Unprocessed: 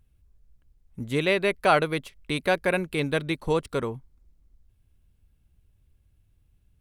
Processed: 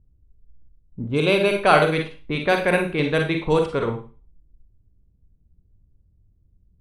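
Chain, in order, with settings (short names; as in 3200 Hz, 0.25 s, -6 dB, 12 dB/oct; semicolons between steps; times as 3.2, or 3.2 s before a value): low-pass opened by the level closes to 400 Hz, open at -19 dBFS; 1.08–1.63 Butterworth band-stop 1900 Hz, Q 4.1; reverb RT60 0.35 s, pre-delay 35 ms, DRR 3 dB; gain +3.5 dB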